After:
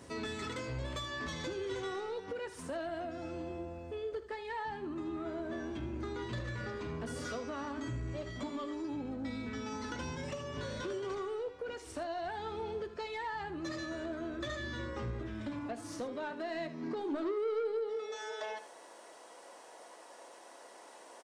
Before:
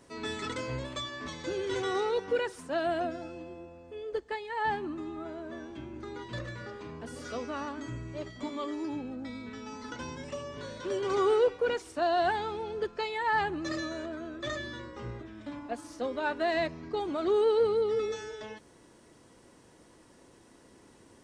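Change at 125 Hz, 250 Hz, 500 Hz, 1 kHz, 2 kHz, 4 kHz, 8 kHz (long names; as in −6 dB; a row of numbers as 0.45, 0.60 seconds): +1.0, −2.5, −8.0, −8.0, −6.0, −5.0, −2.0 decibels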